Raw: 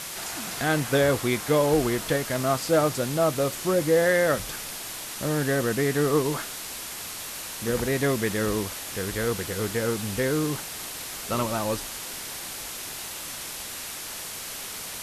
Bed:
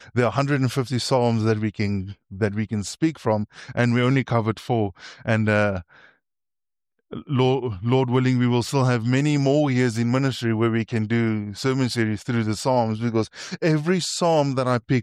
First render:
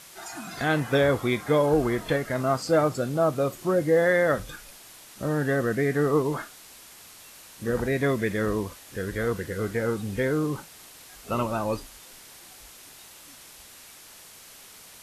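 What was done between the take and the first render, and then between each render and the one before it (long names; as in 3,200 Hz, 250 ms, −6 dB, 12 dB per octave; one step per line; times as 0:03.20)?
noise reduction from a noise print 12 dB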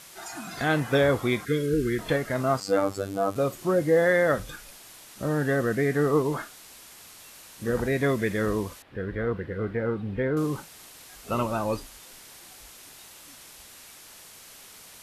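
0:01.45–0:01.99: Chebyshev band-stop filter 430–1,500 Hz, order 3
0:02.60–0:03.36: phases set to zero 98.1 Hz
0:08.82–0:10.37: high-frequency loss of the air 420 metres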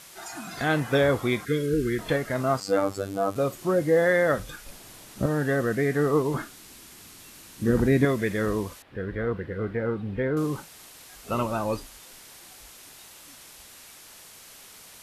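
0:04.66–0:05.26: low-shelf EQ 500 Hz +10.5 dB
0:06.34–0:08.05: low shelf with overshoot 420 Hz +6.5 dB, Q 1.5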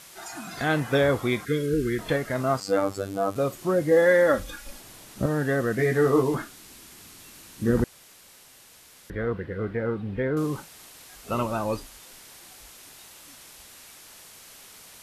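0:03.91–0:04.81: comb filter 3.6 ms
0:05.77–0:06.35: double-tracking delay 16 ms −2.5 dB
0:07.84–0:09.10: fill with room tone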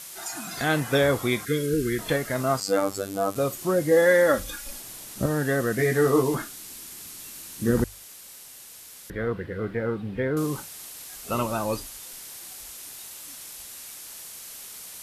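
high-shelf EQ 5,100 Hz +10.5 dB
mains-hum notches 50/100 Hz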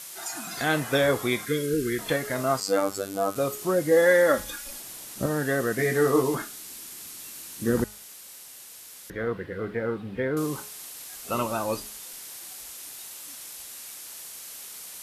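low-shelf EQ 130 Hz −8.5 dB
hum removal 210.3 Hz, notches 32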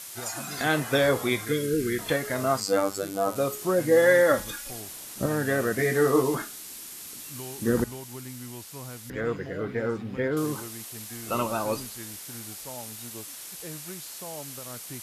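mix in bed −21.5 dB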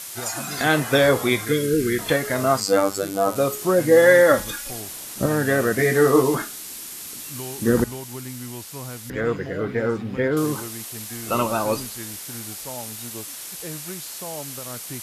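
level +5.5 dB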